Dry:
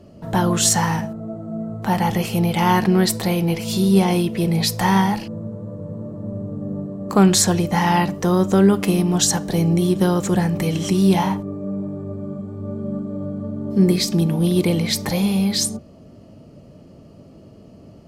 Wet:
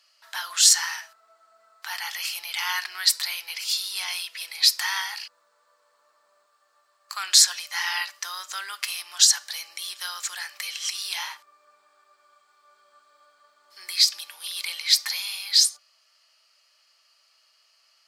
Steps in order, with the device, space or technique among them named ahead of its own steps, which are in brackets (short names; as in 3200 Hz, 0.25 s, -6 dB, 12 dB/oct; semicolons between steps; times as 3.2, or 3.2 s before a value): 6.46–7.23 HPF 820 Hz 6 dB/oct; headphones lying on a table (HPF 1400 Hz 24 dB/oct; bell 4700 Hz +8 dB 0.59 oct); gain -1 dB